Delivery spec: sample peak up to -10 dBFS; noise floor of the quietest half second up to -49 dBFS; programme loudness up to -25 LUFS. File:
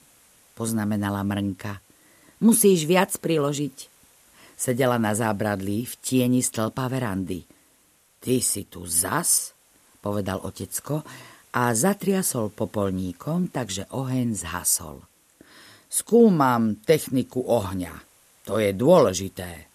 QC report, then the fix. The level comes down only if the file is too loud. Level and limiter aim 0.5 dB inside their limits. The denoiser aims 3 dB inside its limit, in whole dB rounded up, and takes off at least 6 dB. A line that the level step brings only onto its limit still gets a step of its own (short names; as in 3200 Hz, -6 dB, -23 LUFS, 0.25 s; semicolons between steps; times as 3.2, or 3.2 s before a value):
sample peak -4.0 dBFS: fail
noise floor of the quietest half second -61 dBFS: OK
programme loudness -23.5 LUFS: fail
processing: gain -2 dB; limiter -10.5 dBFS